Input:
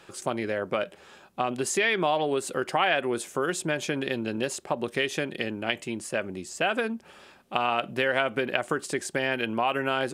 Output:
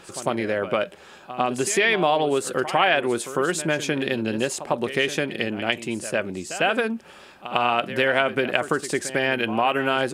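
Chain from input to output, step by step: reverse echo 101 ms -13 dB; trim +4.5 dB

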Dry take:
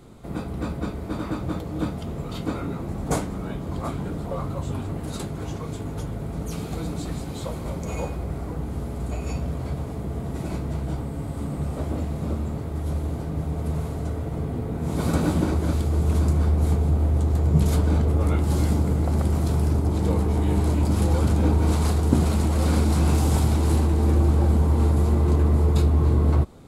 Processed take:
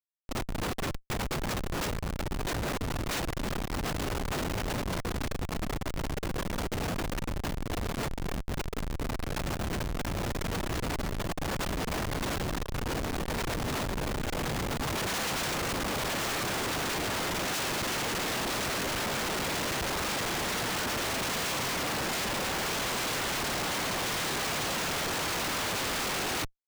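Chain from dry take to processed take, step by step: noise-vocoded speech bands 1; Schmitt trigger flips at -24.5 dBFS; trim -5 dB

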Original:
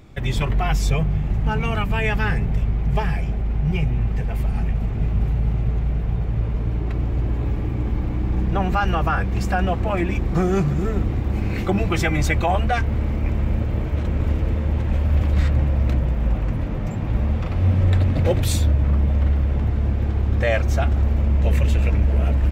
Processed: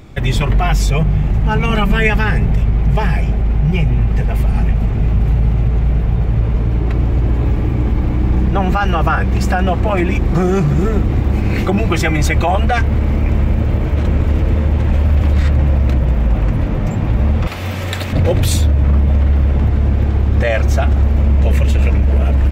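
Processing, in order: 17.47–18.13 s: tilt EQ +4 dB/octave; peak limiter -13.5 dBFS, peak gain reduction 5.5 dB; 1.69–2.10 s: comb 5.1 ms, depth 82%; trim +8 dB

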